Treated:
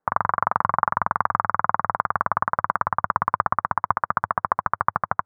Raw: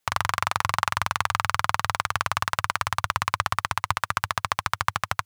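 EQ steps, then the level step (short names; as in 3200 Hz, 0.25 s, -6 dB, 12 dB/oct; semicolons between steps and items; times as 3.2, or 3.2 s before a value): inverse Chebyshev low-pass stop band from 2800 Hz, stop band 40 dB; resonant low shelf 140 Hz -8 dB, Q 1.5; +5.5 dB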